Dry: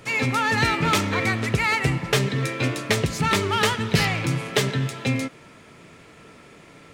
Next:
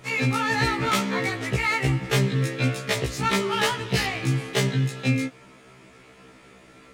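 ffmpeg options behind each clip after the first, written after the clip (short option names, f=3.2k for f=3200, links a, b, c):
-af "afftfilt=real='re*1.73*eq(mod(b,3),0)':imag='im*1.73*eq(mod(b,3),0)':win_size=2048:overlap=0.75"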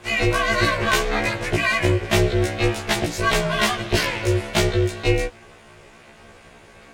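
-af "aeval=exprs='val(0)*sin(2*PI*230*n/s)':c=same,volume=6.5dB"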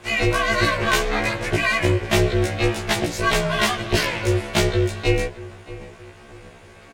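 -filter_complex "[0:a]asplit=2[a][b];[b]adelay=625,lowpass=f=1.8k:p=1,volume=-16.5dB,asplit=2[c][d];[d]adelay=625,lowpass=f=1.8k:p=1,volume=0.43,asplit=2[e][f];[f]adelay=625,lowpass=f=1.8k:p=1,volume=0.43,asplit=2[g][h];[h]adelay=625,lowpass=f=1.8k:p=1,volume=0.43[i];[a][c][e][g][i]amix=inputs=5:normalize=0"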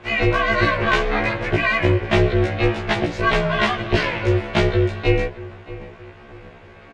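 -af "lowpass=3k,volume=2dB"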